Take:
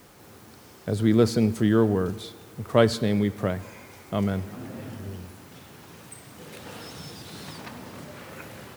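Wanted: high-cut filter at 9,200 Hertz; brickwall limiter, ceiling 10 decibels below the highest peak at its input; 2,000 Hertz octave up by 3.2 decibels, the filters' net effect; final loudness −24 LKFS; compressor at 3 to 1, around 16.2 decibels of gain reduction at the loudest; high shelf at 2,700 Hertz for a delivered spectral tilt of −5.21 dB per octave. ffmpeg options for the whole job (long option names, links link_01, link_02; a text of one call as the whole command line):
ffmpeg -i in.wav -af "lowpass=9200,equalizer=frequency=2000:width_type=o:gain=6.5,highshelf=frequency=2700:gain=-6,acompressor=threshold=-36dB:ratio=3,volume=17.5dB,alimiter=limit=-11dB:level=0:latency=1" out.wav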